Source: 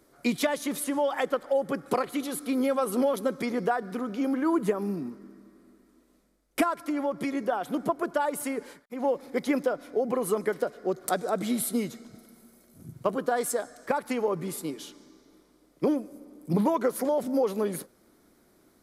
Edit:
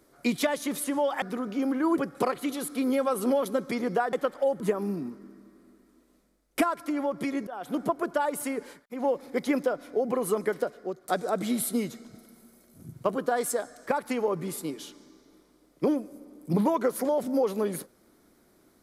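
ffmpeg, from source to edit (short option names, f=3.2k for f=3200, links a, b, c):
-filter_complex "[0:a]asplit=7[a][b][c][d][e][f][g];[a]atrim=end=1.222[h];[b]atrim=start=3.838:end=4.602[i];[c]atrim=start=1.688:end=3.842[j];[d]atrim=start=1.218:end=1.692[k];[e]atrim=start=4.598:end=7.47,asetpts=PTS-STARTPTS,afade=t=out:st=2.868:d=0.004:c=hsin:silence=0.125893[l];[f]atrim=start=7.47:end=11.09,asetpts=PTS-STARTPTS,afade=t=in:d=0.28:silence=0.125893,afade=t=out:st=3.14:d=0.48:silence=0.223872[m];[g]atrim=start=11.09,asetpts=PTS-STARTPTS,afade=t=in:d=0.004:c=hsin:silence=0.223872[n];[h][i]acrossfade=d=0.004:c1=hsin:c2=hsin[o];[o][j]acrossfade=d=0.004:c1=hsin:c2=hsin[p];[p][k]acrossfade=d=0.004:c1=hsin:c2=hsin[q];[l][m][n]concat=n=3:v=0:a=1[r];[q][r]acrossfade=d=0.004:c1=hsin:c2=hsin"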